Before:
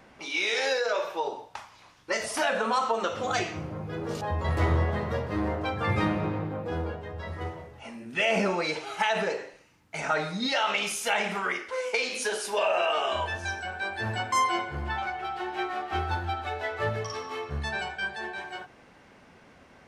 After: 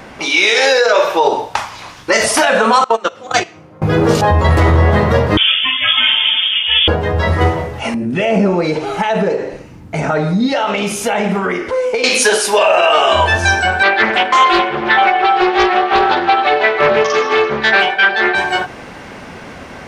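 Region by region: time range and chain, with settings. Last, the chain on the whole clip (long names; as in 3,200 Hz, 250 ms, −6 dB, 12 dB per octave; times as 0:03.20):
0:02.84–0:03.82: high-pass filter 200 Hz 6 dB per octave + noise gate −27 dBFS, range −24 dB
0:05.37–0:06.88: voice inversion scrambler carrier 3,400 Hz + string-ensemble chorus
0:07.94–0:12.04: tilt shelving filter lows +9 dB, about 690 Hz + downward compressor 2 to 1, threshold −43 dBFS
0:13.83–0:18.35: Chebyshev band-pass filter 320–3,400 Hz + comb filter 5.1 ms, depth 52% + highs frequency-modulated by the lows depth 0.35 ms
whole clip: speech leveller within 3 dB 0.5 s; boost into a limiter +20.5 dB; level −1 dB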